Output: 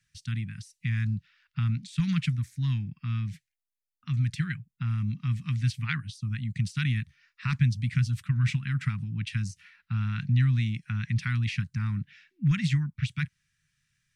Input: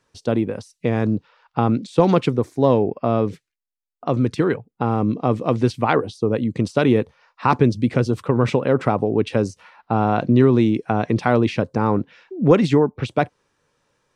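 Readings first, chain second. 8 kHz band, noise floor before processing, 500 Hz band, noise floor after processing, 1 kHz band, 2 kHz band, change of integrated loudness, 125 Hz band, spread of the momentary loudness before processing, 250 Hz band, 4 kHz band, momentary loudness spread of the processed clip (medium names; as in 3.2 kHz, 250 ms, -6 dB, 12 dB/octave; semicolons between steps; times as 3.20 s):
no reading, -80 dBFS, under -40 dB, under -85 dBFS, -24.0 dB, -6.0 dB, -9.5 dB, -2.5 dB, 8 LU, -14.5 dB, -5.0 dB, 9 LU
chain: Chebyshev band-stop 160–1800 Hz, order 3; peaking EQ 4.3 kHz -2.5 dB 1.4 oct; trim -2 dB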